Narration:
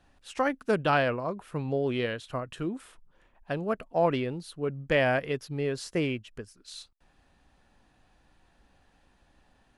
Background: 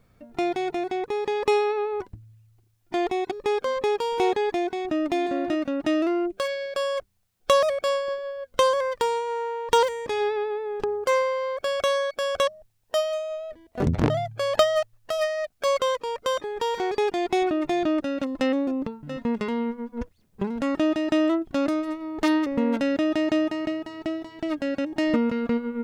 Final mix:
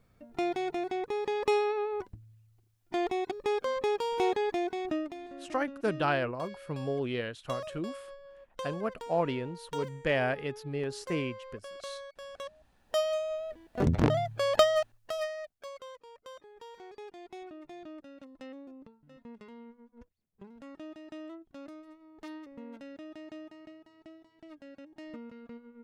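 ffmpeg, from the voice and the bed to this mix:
-filter_complex "[0:a]adelay=5150,volume=-4dB[a];[1:a]volume=10.5dB,afade=t=out:st=4.92:d=0.22:silence=0.211349,afade=t=in:st=12.45:d=0.67:silence=0.158489,afade=t=out:st=14.63:d=1.07:silence=0.105925[b];[a][b]amix=inputs=2:normalize=0"

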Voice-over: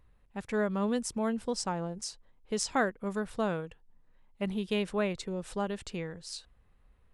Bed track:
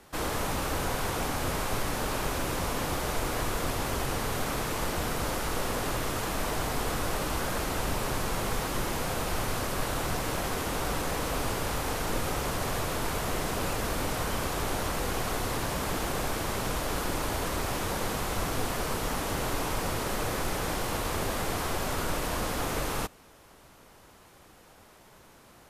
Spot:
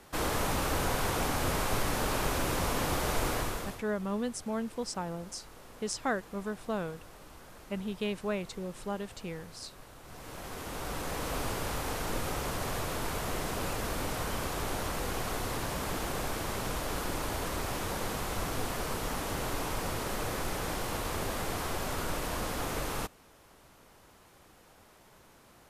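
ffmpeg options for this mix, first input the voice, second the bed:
-filter_complex "[0:a]adelay=3300,volume=-3dB[a];[1:a]volume=17.5dB,afade=t=out:st=3.28:d=0.55:silence=0.0891251,afade=t=in:st=10.03:d=1.31:silence=0.133352[b];[a][b]amix=inputs=2:normalize=0"

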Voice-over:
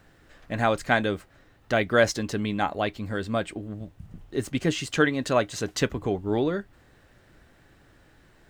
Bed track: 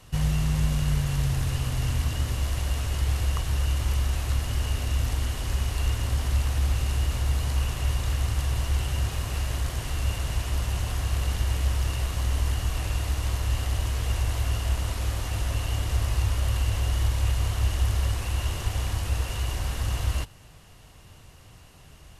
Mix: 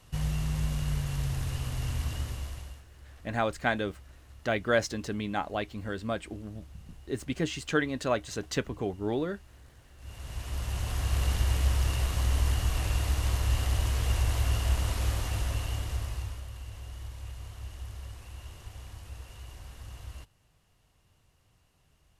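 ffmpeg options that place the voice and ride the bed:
-filter_complex "[0:a]adelay=2750,volume=-5.5dB[a];[1:a]volume=19.5dB,afade=t=out:st=2.14:d=0.7:silence=0.0944061,afade=t=in:st=9.97:d=1.27:silence=0.0530884,afade=t=out:st=15.09:d=1.38:silence=0.158489[b];[a][b]amix=inputs=2:normalize=0"

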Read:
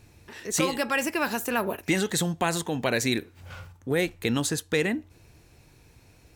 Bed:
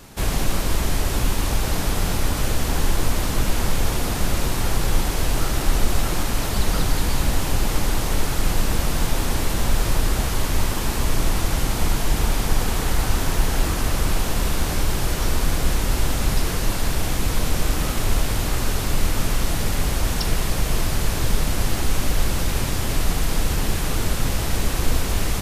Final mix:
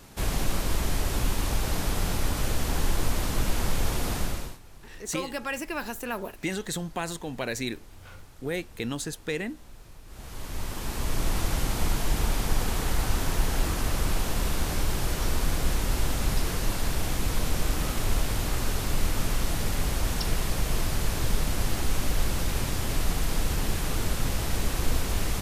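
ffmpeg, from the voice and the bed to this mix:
-filter_complex "[0:a]adelay=4550,volume=-6dB[a];[1:a]volume=18dB,afade=t=out:st=4.15:d=0.44:silence=0.0668344,afade=t=in:st=10.06:d=1.34:silence=0.0668344[b];[a][b]amix=inputs=2:normalize=0"

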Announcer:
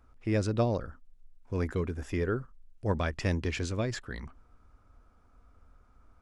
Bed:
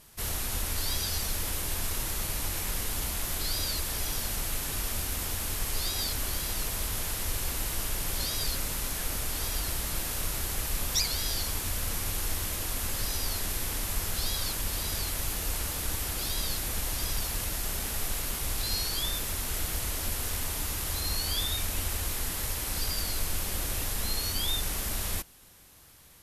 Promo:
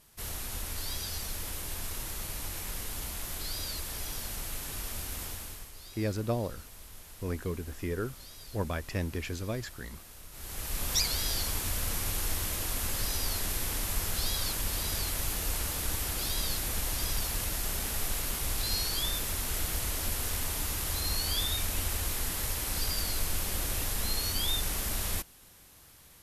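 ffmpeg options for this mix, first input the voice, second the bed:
-filter_complex "[0:a]adelay=5700,volume=-3.5dB[a];[1:a]volume=11.5dB,afade=t=out:st=5.23:d=0.48:silence=0.251189,afade=t=in:st=10.31:d=0.63:silence=0.141254[b];[a][b]amix=inputs=2:normalize=0"

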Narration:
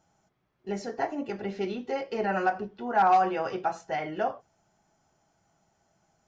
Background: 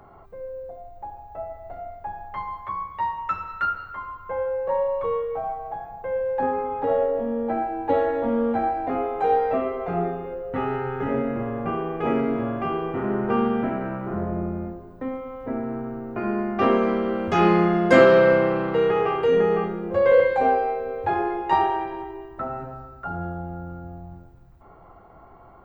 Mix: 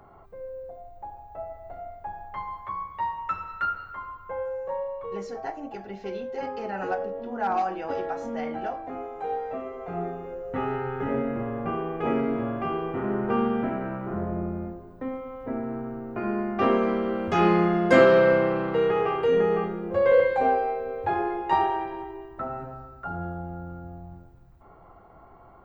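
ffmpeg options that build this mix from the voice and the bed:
-filter_complex "[0:a]adelay=4450,volume=-5dB[a];[1:a]volume=4.5dB,afade=t=out:st=4.04:d=0.99:silence=0.446684,afade=t=in:st=9.64:d=0.93:silence=0.421697[b];[a][b]amix=inputs=2:normalize=0"

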